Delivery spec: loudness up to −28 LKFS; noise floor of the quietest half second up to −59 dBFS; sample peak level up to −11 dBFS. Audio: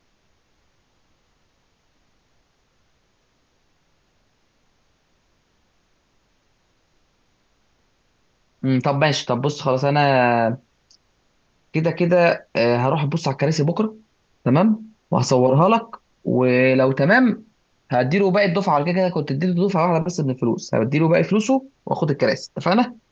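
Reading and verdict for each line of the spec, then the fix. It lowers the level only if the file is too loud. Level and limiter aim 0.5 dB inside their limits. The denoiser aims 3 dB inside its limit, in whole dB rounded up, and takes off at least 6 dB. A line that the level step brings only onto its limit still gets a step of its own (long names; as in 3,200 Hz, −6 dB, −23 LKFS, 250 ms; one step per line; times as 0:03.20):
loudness −19.5 LKFS: out of spec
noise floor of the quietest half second −64 dBFS: in spec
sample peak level −3.0 dBFS: out of spec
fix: level −9 dB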